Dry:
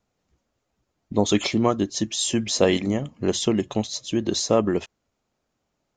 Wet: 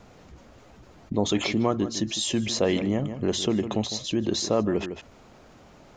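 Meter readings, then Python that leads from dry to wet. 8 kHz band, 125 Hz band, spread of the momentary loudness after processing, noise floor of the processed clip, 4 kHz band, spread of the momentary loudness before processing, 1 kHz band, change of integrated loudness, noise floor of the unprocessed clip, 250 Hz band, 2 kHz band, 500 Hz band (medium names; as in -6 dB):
-4.5 dB, -1.5 dB, 4 LU, -52 dBFS, -1.5 dB, 6 LU, -3.5 dB, -3.0 dB, -77 dBFS, -2.5 dB, -2.0 dB, -3.5 dB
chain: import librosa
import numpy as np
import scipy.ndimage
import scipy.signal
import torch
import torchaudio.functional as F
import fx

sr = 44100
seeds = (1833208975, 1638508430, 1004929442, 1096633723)

y = fx.lowpass(x, sr, hz=3000.0, slope=6)
y = y + 10.0 ** (-18.0 / 20.0) * np.pad(y, (int(155 * sr / 1000.0), 0))[:len(y)]
y = fx.env_flatten(y, sr, amount_pct=50)
y = y * librosa.db_to_amplitude(-5.5)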